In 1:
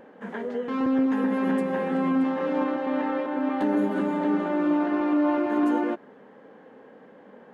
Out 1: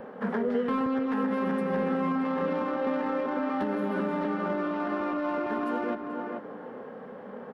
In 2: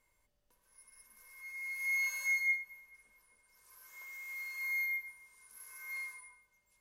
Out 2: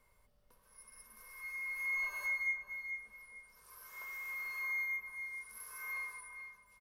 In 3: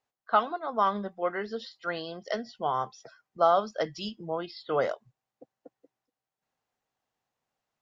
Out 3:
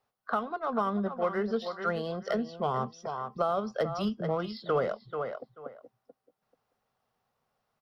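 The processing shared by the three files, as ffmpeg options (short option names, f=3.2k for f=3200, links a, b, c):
-filter_complex "[0:a]asplit=2[a][b];[b]adynamicsmooth=sensitivity=7.5:basefreq=1.5k,volume=-2dB[c];[a][c]amix=inputs=2:normalize=0,alimiter=limit=-12.5dB:level=0:latency=1:release=344,asplit=2[d][e];[e]adelay=436,lowpass=f=2.4k:p=1,volume=-11.5dB,asplit=2[f][g];[g]adelay=436,lowpass=f=2.4k:p=1,volume=0.19[h];[d][f][h]amix=inputs=3:normalize=0,acrossover=split=430|1400[i][j][k];[i]acompressor=threshold=-29dB:ratio=4[l];[j]acompressor=threshold=-39dB:ratio=4[m];[k]acompressor=threshold=-46dB:ratio=4[n];[l][m][n]amix=inputs=3:normalize=0,superequalizer=6b=0.447:10b=1.58:15b=0.501,volume=3dB"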